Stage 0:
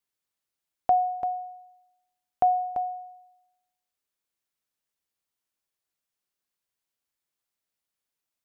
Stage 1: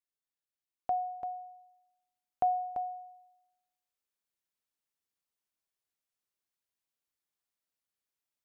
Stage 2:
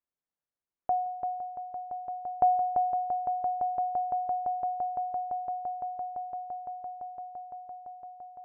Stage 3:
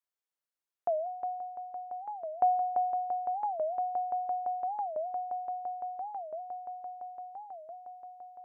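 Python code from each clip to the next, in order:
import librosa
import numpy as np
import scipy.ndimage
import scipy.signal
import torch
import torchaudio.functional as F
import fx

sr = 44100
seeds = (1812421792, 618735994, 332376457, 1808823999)

y1 = fx.rider(x, sr, range_db=10, speed_s=2.0)
y1 = F.gain(torch.from_numpy(y1), -9.0).numpy()
y2 = scipy.signal.sosfilt(scipy.signal.butter(2, 1400.0, 'lowpass', fs=sr, output='sos'), y1)
y2 = fx.echo_swell(y2, sr, ms=170, loudest=8, wet_db=-14.0)
y2 = F.gain(torch.from_numpy(y2), 3.5).numpy()
y3 = fx.highpass(y2, sr, hz=620.0, slope=6)
y3 = fx.record_warp(y3, sr, rpm=45.0, depth_cents=250.0)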